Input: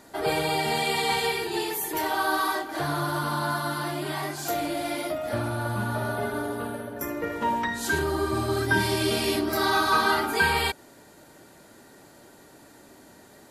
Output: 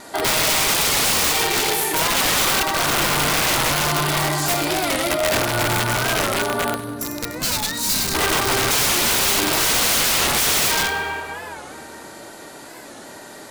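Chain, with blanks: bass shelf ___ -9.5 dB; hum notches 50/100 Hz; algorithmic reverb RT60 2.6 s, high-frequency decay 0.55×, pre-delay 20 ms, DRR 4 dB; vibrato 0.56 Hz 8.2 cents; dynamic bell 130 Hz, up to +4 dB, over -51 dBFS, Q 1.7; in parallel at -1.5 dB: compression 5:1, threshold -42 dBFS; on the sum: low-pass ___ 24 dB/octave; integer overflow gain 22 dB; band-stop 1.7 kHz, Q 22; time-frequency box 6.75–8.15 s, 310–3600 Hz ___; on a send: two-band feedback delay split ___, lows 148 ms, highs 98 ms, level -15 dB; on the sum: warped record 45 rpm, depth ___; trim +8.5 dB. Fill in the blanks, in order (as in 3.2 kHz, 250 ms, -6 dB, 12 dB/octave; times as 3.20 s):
360 Hz, 12 kHz, -9 dB, 1.1 kHz, 160 cents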